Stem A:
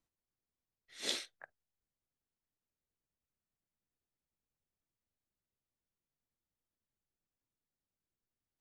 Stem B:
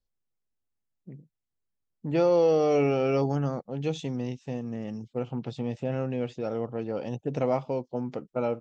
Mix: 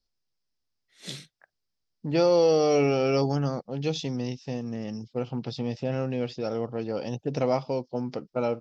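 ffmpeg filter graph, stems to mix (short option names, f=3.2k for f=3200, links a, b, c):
-filter_complex "[0:a]adynamicequalizer=threshold=0.00355:dfrequency=1800:dqfactor=0.7:tfrequency=1800:tqfactor=0.7:attack=5:release=100:ratio=0.375:range=2:mode=boostabove:tftype=highshelf,volume=-6dB[a];[1:a]lowpass=f=5.1k:t=q:w=4.9,volume=1dB[b];[a][b]amix=inputs=2:normalize=0"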